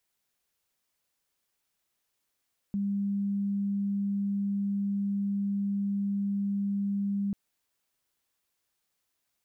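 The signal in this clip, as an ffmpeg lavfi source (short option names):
-f lavfi -i "sine=f=200:d=4.59:r=44100,volume=-8.44dB"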